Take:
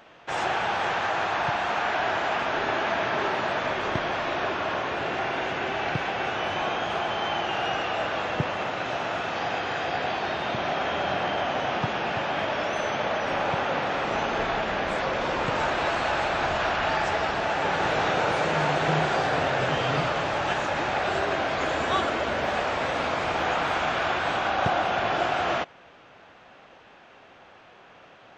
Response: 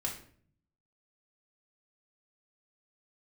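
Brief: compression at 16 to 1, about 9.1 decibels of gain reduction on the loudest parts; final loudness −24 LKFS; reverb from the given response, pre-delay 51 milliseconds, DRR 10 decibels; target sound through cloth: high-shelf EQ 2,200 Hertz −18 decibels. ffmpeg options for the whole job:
-filter_complex "[0:a]acompressor=threshold=-29dB:ratio=16,asplit=2[link_01][link_02];[1:a]atrim=start_sample=2205,adelay=51[link_03];[link_02][link_03]afir=irnorm=-1:irlink=0,volume=-12.5dB[link_04];[link_01][link_04]amix=inputs=2:normalize=0,highshelf=frequency=2200:gain=-18,volume=11.5dB"

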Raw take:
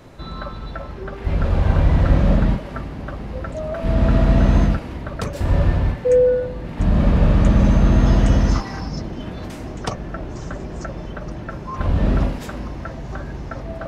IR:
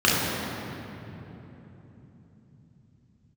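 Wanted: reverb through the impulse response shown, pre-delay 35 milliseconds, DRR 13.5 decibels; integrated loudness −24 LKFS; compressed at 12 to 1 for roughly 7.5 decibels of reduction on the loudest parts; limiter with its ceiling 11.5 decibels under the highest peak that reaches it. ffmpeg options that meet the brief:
-filter_complex "[0:a]acompressor=threshold=-17dB:ratio=12,alimiter=limit=-22dB:level=0:latency=1,asplit=2[link_01][link_02];[1:a]atrim=start_sample=2205,adelay=35[link_03];[link_02][link_03]afir=irnorm=-1:irlink=0,volume=-34dB[link_04];[link_01][link_04]amix=inputs=2:normalize=0,volume=7dB"

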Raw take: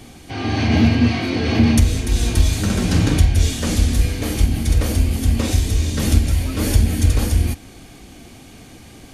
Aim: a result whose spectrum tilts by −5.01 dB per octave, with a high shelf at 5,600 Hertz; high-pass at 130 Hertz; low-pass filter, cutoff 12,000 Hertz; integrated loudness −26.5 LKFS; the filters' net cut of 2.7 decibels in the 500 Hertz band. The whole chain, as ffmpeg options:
ffmpeg -i in.wav -af "highpass=130,lowpass=12000,equalizer=frequency=500:width_type=o:gain=-3.5,highshelf=frequency=5600:gain=-4,volume=-4dB" out.wav

